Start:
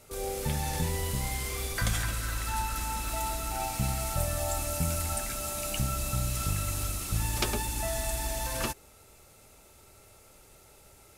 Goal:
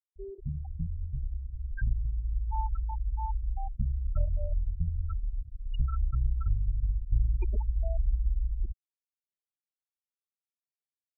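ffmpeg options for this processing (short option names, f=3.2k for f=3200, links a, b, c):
-af "asubboost=boost=6.5:cutoff=50,afftfilt=real='re*gte(hypot(re,im),0.158)':imag='im*gte(hypot(re,im),0.158)':win_size=1024:overlap=0.75,volume=-1.5dB"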